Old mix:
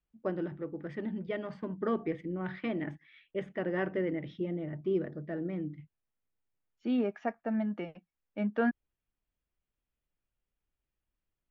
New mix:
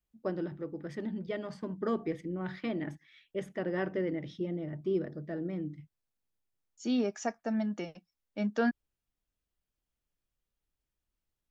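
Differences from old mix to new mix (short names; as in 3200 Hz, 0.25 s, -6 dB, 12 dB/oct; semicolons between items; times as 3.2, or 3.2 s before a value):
first voice: add air absorption 230 m; master: remove LPF 2800 Hz 24 dB/oct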